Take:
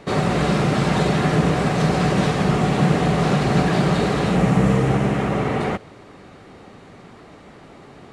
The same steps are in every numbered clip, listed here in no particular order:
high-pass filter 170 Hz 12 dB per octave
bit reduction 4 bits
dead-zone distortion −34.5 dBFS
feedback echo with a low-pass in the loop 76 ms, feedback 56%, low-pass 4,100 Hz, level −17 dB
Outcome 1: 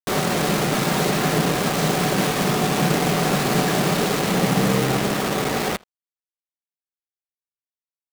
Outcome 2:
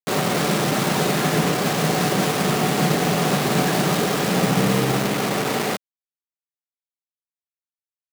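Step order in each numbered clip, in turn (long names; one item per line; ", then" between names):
high-pass filter, then bit reduction, then feedback echo with a low-pass in the loop, then dead-zone distortion
feedback echo with a low-pass in the loop, then bit reduction, then dead-zone distortion, then high-pass filter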